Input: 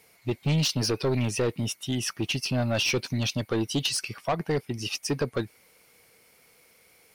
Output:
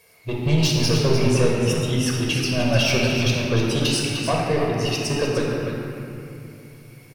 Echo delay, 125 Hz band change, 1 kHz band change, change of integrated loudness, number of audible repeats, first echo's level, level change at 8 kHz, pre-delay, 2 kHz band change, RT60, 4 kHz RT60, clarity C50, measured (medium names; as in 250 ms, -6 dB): 301 ms, +8.0 dB, +7.0 dB, +6.5 dB, 1, -7.5 dB, +4.0 dB, 13 ms, +7.5 dB, 2.8 s, 1.8 s, -2.0 dB